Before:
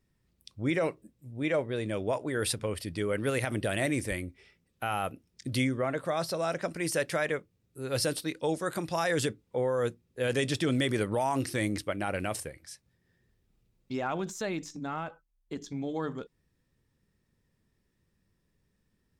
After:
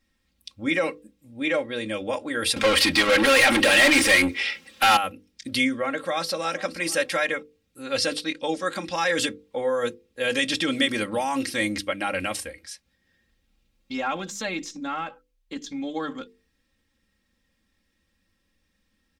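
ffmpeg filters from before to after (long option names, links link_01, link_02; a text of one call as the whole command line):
ffmpeg -i in.wav -filter_complex "[0:a]asettb=1/sr,asplit=3[link_01][link_02][link_03];[link_01]atrim=end=2.564[link_04];[link_02]atrim=start=2.56:end=4.97,asetpts=PTS-STARTPTS,afade=type=in:duration=0.004:curve=qsin,afade=type=out:start_time=2.406:duration=0.004:curve=qsin,asplit=2[link_05][link_06];[link_06]highpass=frequency=720:poles=1,volume=32dB,asoftclip=type=tanh:threshold=-16dB[link_07];[link_05][link_07]amix=inputs=2:normalize=0,lowpass=frequency=4900:poles=1,volume=-6dB[link_08];[link_03]atrim=start=4.966[link_09];[link_04][link_08]acrossfade=duration=0.004:curve1=hsin:curve2=qsin[link_10];[link_10][link_09]acrossfade=duration=0.004:curve1=qsin:curve2=hsin,asplit=2[link_11][link_12];[link_12]afade=type=in:start_time=5.95:duration=0.01,afade=type=out:start_time=6.48:duration=0.01,aecho=0:1:470|940:0.133352|0.0200028[link_13];[link_11][link_13]amix=inputs=2:normalize=0,asettb=1/sr,asplit=3[link_14][link_15][link_16];[link_14]atrim=end=7.824[link_17];[link_15]atrim=start=7.82:end=9.15,asetpts=PTS-STARTPTS,afade=type=in:duration=0.004:curve=qsin,afade=type=out:start_time=1.326:duration=0.004:curve=qsin,lowpass=7600[link_18];[link_16]atrim=start=9.146[link_19];[link_17][link_18]acrossfade=duration=0.004:curve1=hsin:curve2=qsin[link_20];[link_20][link_19]acrossfade=duration=0.004:curve1=qsin:curve2=hsin,equalizer=frequency=3100:width=0.54:gain=8.5,bandreject=frequency=50:width_type=h:width=6,bandreject=frequency=100:width_type=h:width=6,bandreject=frequency=150:width_type=h:width=6,bandreject=frequency=200:width_type=h:width=6,bandreject=frequency=250:width_type=h:width=6,bandreject=frequency=300:width_type=h:width=6,bandreject=frequency=350:width_type=h:width=6,bandreject=frequency=400:width_type=h:width=6,bandreject=frequency=450:width_type=h:width=6,bandreject=frequency=500:width_type=h:width=6,aecho=1:1:3.7:0.81" out.wav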